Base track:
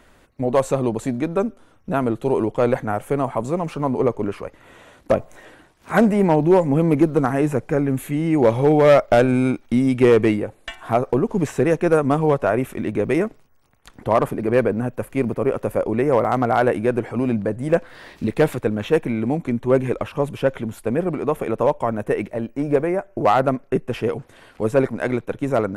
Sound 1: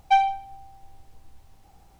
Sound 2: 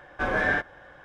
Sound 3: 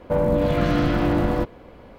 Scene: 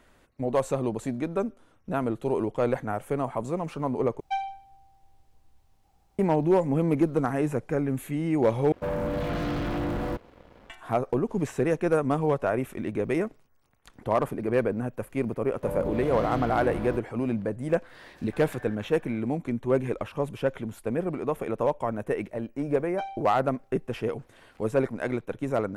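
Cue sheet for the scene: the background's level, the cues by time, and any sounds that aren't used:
base track −7 dB
0:04.20: overwrite with 1 −11 dB
0:08.72: overwrite with 3 −16 dB + leveller curve on the samples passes 3
0:15.53: mix in 3 −12 dB
0:18.14: mix in 2 −7.5 dB + downward compressor 4 to 1, threshold −40 dBFS
0:22.87: mix in 1 −17 dB

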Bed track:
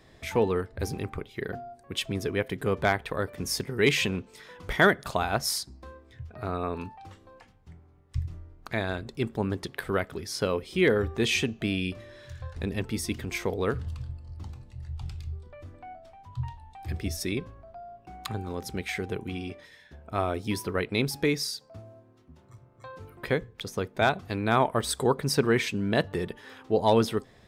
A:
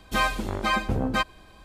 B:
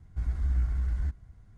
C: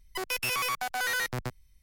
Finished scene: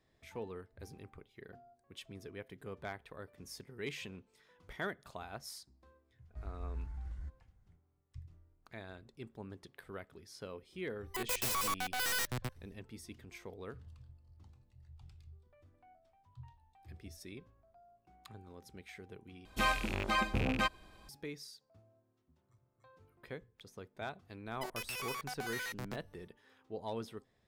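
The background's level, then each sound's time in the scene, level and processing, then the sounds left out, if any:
bed track −19 dB
0:06.19: mix in B −14.5 dB
0:10.99: mix in C −4.5 dB, fades 0.10 s + stylus tracing distortion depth 0.41 ms
0:19.45: overwrite with A −7.5 dB + loose part that buzzes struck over −31 dBFS, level −19 dBFS
0:24.46: mix in C −7.5 dB + downward compressor 2.5 to 1, threshold −33 dBFS

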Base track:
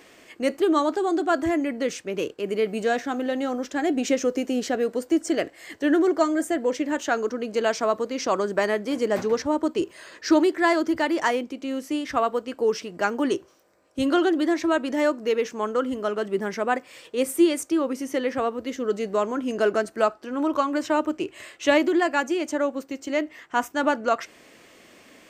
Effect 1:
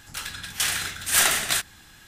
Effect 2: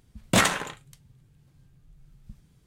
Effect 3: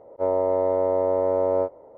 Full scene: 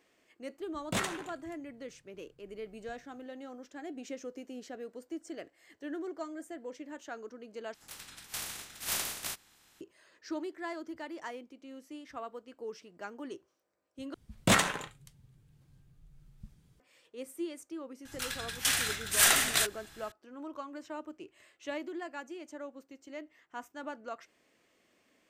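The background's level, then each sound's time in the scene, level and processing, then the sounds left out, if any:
base track −19 dB
0:00.59: mix in 2 −12.5 dB
0:07.74: overwrite with 1 −14 dB + ceiling on every frequency bin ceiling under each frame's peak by 16 dB
0:14.14: overwrite with 2 −4 dB
0:18.05: mix in 1 −4 dB
not used: 3

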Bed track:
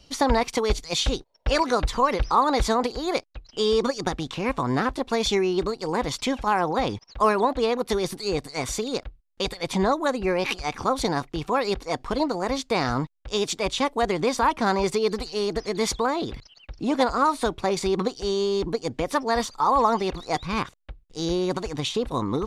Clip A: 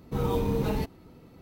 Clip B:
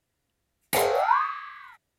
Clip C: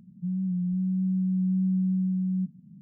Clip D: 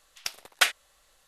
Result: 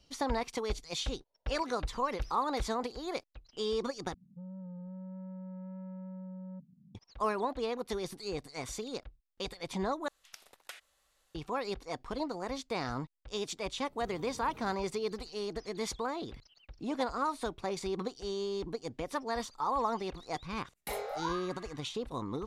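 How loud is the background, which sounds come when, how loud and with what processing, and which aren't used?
bed track −11.5 dB
0:01.96: mix in D −15 dB + downward compressor, threshold −40 dBFS
0:04.14: overwrite with C −10.5 dB + soft clipping −32 dBFS
0:10.08: overwrite with D −9.5 dB + downward compressor, threshold −34 dBFS
0:13.89: mix in A −12.5 dB + downward compressor 10 to 1, threshold −36 dBFS
0:20.14: mix in B −15.5 dB + comb filter 4.9 ms, depth 41%

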